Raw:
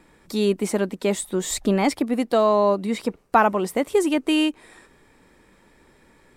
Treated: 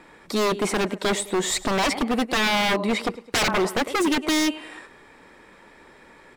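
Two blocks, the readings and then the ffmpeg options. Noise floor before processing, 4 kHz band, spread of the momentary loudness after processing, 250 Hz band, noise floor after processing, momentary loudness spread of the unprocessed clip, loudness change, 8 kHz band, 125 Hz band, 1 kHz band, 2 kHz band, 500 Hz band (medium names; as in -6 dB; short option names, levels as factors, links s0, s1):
-57 dBFS, +6.5 dB, 5 LU, -2.5 dB, -51 dBFS, 7 LU, -1.0 dB, +2.5 dB, no reading, -2.0 dB, +5.5 dB, -4.0 dB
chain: -filter_complex "[0:a]aecho=1:1:105|210|315:0.1|0.043|0.0185,asplit=2[s0][s1];[s1]highpass=f=720:p=1,volume=3.98,asoftclip=type=tanh:threshold=0.596[s2];[s0][s2]amix=inputs=2:normalize=0,lowpass=f=2500:p=1,volume=0.501,aeval=exprs='0.112*(abs(mod(val(0)/0.112+3,4)-2)-1)':c=same,volume=1.41"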